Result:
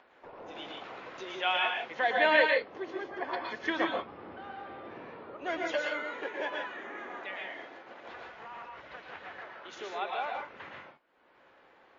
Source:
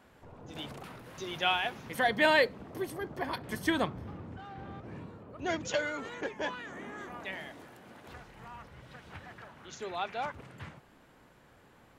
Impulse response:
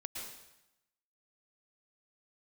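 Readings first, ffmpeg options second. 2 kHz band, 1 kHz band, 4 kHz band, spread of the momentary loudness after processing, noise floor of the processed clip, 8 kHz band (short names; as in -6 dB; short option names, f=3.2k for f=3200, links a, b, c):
+2.0 dB, +1.5 dB, 0.0 dB, 19 LU, -62 dBFS, -10.5 dB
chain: -filter_complex "[0:a]agate=range=-28dB:threshold=-51dB:ratio=16:detection=peak,acrossover=split=330 3800:gain=0.0794 1 0.158[a][b][c];[a][b][c]amix=inputs=3:normalize=0,acompressor=mode=upward:threshold=-40dB:ratio=2.5[d];[1:a]atrim=start_sample=2205,afade=t=out:st=0.23:d=0.01,atrim=end_sample=10584[e];[d][e]afir=irnorm=-1:irlink=0,volume=4.5dB" -ar 16000 -c:a libmp3lame -b:a 32k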